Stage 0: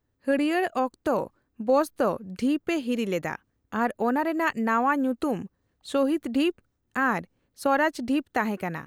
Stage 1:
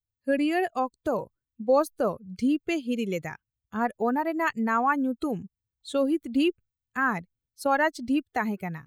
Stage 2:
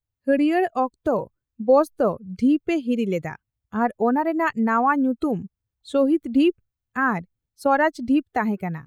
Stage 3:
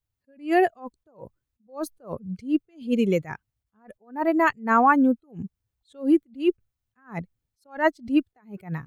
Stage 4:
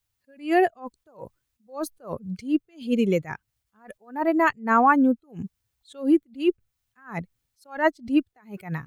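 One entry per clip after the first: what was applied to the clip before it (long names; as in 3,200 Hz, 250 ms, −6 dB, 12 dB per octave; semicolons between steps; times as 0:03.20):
spectral dynamics exaggerated over time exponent 1.5; level +1.5 dB
high-shelf EQ 2,100 Hz −9 dB; level +6 dB
level that may rise only so fast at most 210 dB per second; level +2 dB
one half of a high-frequency compander encoder only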